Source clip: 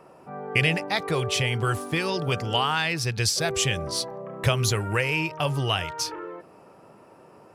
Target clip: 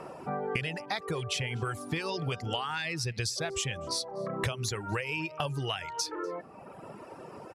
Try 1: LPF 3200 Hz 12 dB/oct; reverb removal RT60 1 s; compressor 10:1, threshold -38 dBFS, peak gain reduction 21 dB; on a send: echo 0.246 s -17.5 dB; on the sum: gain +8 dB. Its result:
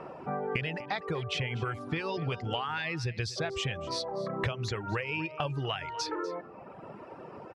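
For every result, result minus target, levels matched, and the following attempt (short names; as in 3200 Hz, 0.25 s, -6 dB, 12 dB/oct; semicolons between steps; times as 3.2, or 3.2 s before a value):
8000 Hz band -8.5 dB; echo-to-direct +9.5 dB
LPF 11000 Hz 12 dB/oct; reverb removal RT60 1 s; compressor 10:1, threshold -38 dBFS, peak gain reduction 21.5 dB; on a send: echo 0.246 s -17.5 dB; on the sum: gain +8 dB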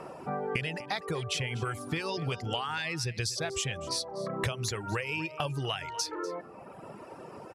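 echo-to-direct +9.5 dB
LPF 11000 Hz 12 dB/oct; reverb removal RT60 1 s; compressor 10:1, threshold -38 dBFS, peak gain reduction 21.5 dB; on a send: echo 0.246 s -27 dB; on the sum: gain +8 dB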